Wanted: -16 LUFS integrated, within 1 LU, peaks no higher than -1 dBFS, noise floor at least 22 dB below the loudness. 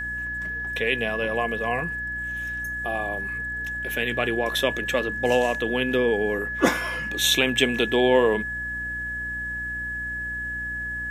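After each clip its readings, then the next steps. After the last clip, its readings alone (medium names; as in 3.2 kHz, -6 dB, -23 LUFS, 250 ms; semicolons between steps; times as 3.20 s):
hum 60 Hz; highest harmonic 300 Hz; hum level -38 dBFS; steady tone 1.7 kHz; tone level -28 dBFS; loudness -24.5 LUFS; peak level -4.5 dBFS; loudness target -16.0 LUFS
-> de-hum 60 Hz, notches 5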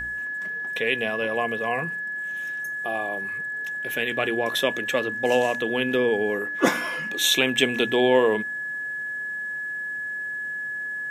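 hum not found; steady tone 1.7 kHz; tone level -28 dBFS
-> band-stop 1.7 kHz, Q 30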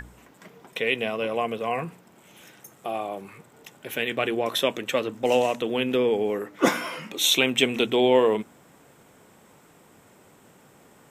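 steady tone not found; loudness -24.5 LUFS; peak level -5.5 dBFS; loudness target -16.0 LUFS
-> trim +8.5 dB; peak limiter -1 dBFS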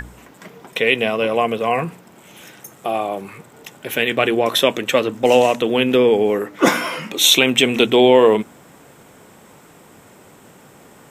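loudness -16.5 LUFS; peak level -1.0 dBFS; noise floor -47 dBFS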